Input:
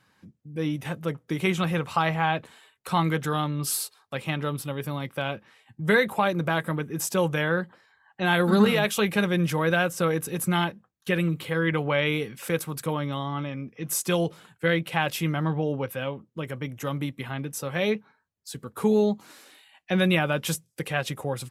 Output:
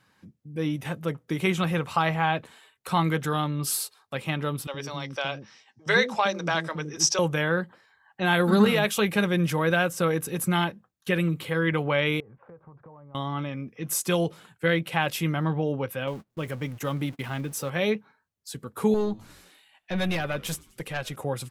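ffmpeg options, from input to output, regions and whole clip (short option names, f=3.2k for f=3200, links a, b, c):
-filter_complex "[0:a]asettb=1/sr,asplit=3[a][b][c];[a]atrim=end=4.674[d];[b]atrim=start=4.67:end=7.19,asetpts=PTS-STARTPTS,afade=t=in:d=0.004:c=qsin,afade=t=out:st=2.516:d=0.004:c=qsin,lowpass=f=5.6k:t=q:w=8,bass=f=250:g=-6,treble=f=4k:g=0,acrossover=split=360[e][f];[e]adelay=70[g];[g][f]amix=inputs=2:normalize=0,atrim=end_sample=111132[h];[c]atrim=start=7.186[i];[d][h]acrossfade=d=0.004:c1=hsin:c2=qsin[j];[j][i]acrossfade=d=0.004:c1=qsin:c2=hsin,asettb=1/sr,asplit=3[k][l][m];[k]atrim=end=12.204[n];[l]atrim=start=12.2:end=13.15,asetpts=PTS-STARTPTS,afade=t=in:d=0.004:c=qsin,afade=t=out:st=0.946:d=0.004:c=qsin,lowpass=f=1k:w=0.5412,lowpass=f=1k:w=1.3066,equalizer=f=260:t=o:w=1.9:g=-12.5,acompressor=threshold=-44dB:ratio=10:attack=3.2:release=140:knee=1:detection=peak[o];[m]atrim=start=13.146[p];[n][o]acrossfade=d=0.004:c1=hsin:c2=qsin[q];[q][p]acrossfade=d=0.004:c1=qsin:c2=hsin,asettb=1/sr,asplit=3[r][s][t];[r]atrim=end=16.074[u];[s]atrim=start=16.07:end=17.7,asetpts=PTS-STARTPTS,afade=t=in:d=0.004:c=qsin,afade=t=out:st=1.626:d=0.004:c=qsin,aeval=exprs='val(0)+0.5*0.0075*sgn(val(0))':c=same,agate=range=-31dB:threshold=-41dB:ratio=16:release=100:detection=peak[v];[t]atrim=start=17.696[w];[u][v]acrossfade=d=0.004:c1=hsin:c2=qsin[x];[x][w]acrossfade=d=0.004:c1=qsin:c2=hsin,asettb=1/sr,asplit=3[y][z][aa];[y]atrim=end=18.944[ab];[z]atrim=start=18.94:end=21.16,asetpts=PTS-STARTPTS,afade=t=in:d=0.004:c=qsin,afade=t=out:st=2.216:d=0.004:c=qsin,aeval=exprs='(tanh(7.94*val(0)+0.65)-tanh(0.65))/7.94':c=same,asplit=5[ac][ad][ae][af][ag];[ad]adelay=89,afreqshift=-96,volume=-24dB[ah];[ae]adelay=178,afreqshift=-192,volume=-28.3dB[ai];[af]adelay=267,afreqshift=-288,volume=-32.6dB[aj];[ag]adelay=356,afreqshift=-384,volume=-36.9dB[ak];[ac][ah][ai][aj][ak]amix=inputs=5:normalize=0,atrim=end_sample=97902[al];[aa]atrim=start=21.156[am];[ab][al]acrossfade=d=0.004:c1=hsin:c2=qsin[an];[an][am]acrossfade=d=0.004:c1=qsin:c2=hsin"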